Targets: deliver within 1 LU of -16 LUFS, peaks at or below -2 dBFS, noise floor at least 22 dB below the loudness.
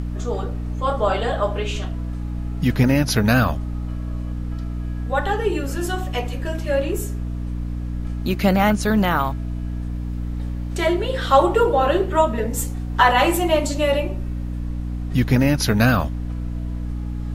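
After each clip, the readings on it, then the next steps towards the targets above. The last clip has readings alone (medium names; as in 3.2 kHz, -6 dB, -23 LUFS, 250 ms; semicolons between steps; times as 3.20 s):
hum 60 Hz; highest harmonic 300 Hz; hum level -24 dBFS; noise floor -27 dBFS; noise floor target -44 dBFS; loudness -21.5 LUFS; peak level -2.5 dBFS; loudness target -16.0 LUFS
-> hum notches 60/120/180/240/300 Hz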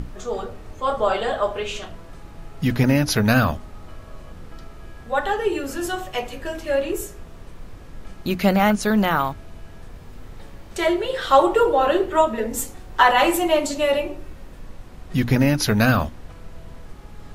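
hum not found; noise floor -41 dBFS; noise floor target -43 dBFS
-> noise print and reduce 6 dB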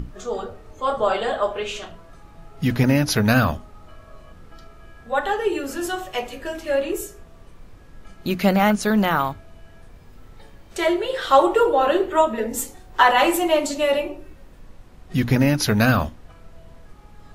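noise floor -47 dBFS; loudness -21.0 LUFS; peak level -3.0 dBFS; loudness target -16.0 LUFS
-> trim +5 dB; peak limiter -2 dBFS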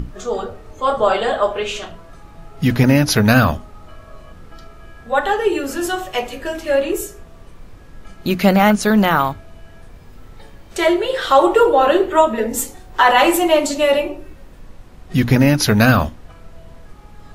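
loudness -16.5 LUFS; peak level -2.0 dBFS; noise floor -42 dBFS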